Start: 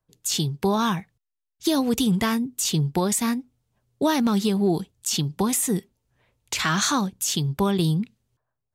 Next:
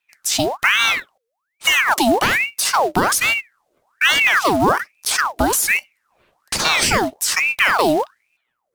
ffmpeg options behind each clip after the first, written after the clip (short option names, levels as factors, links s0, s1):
-af "acrusher=bits=5:mode=log:mix=0:aa=0.000001,aeval=exprs='val(0)*sin(2*PI*1500*n/s+1500*0.7/1.2*sin(2*PI*1.2*n/s))':c=same,volume=2.66"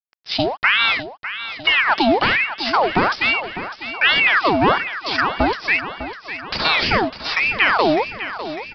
-af "aresample=11025,aeval=exprs='sgn(val(0))*max(abs(val(0))-0.00891,0)':c=same,aresample=44100,aecho=1:1:602|1204|1806|2408|3010|3612:0.251|0.141|0.0788|0.0441|0.0247|0.0138"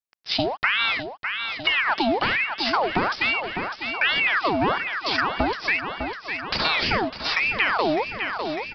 -af "acompressor=threshold=0.0891:ratio=2.5"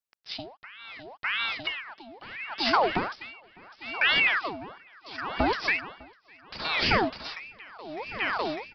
-af "aeval=exprs='val(0)*pow(10,-25*(0.5-0.5*cos(2*PI*0.72*n/s))/20)':c=same"